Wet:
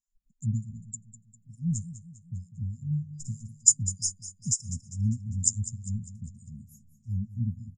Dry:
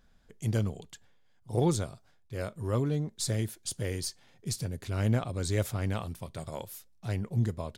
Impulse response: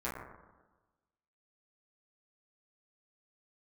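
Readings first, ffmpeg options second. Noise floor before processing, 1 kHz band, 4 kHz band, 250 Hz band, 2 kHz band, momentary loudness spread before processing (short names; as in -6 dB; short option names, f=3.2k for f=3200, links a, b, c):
-63 dBFS, under -40 dB, -3.0 dB, -2.0 dB, under -40 dB, 12 LU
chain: -filter_complex "[0:a]afftdn=nr=28:nf=-40,afftfilt=real='re*(1-between(b*sr/4096,250,4900))':imag='im*(1-between(b*sr/4096,250,4900))':win_size=4096:overlap=0.75,asplit=2[a][b];[b]alimiter=level_in=3dB:limit=-24dB:level=0:latency=1:release=278,volume=-3dB,volume=-3dB[c];[a][c]amix=inputs=2:normalize=0,lowpass=f=7.1k:t=q:w=14,acrossover=split=610[d][e];[d]aeval=exprs='val(0)*(1-1/2+1/2*cos(2*PI*3.3*n/s))':c=same[f];[e]aeval=exprs='val(0)*(1-1/2-1/2*cos(2*PI*3.3*n/s))':c=same[g];[f][g]amix=inputs=2:normalize=0,asplit=2[h][i];[i]aecho=0:1:200|400|600|800|1000:0.2|0.0958|0.046|0.0221|0.0106[j];[h][j]amix=inputs=2:normalize=0"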